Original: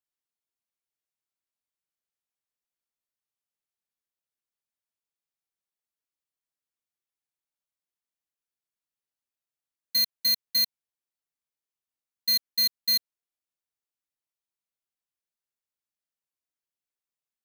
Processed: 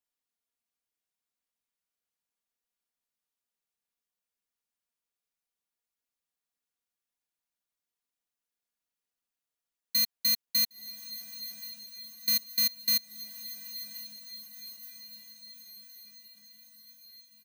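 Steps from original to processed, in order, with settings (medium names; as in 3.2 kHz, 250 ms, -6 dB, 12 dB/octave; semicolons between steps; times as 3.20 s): comb 4.2 ms, depth 50%; echo that smears into a reverb 1030 ms, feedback 61%, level -13 dB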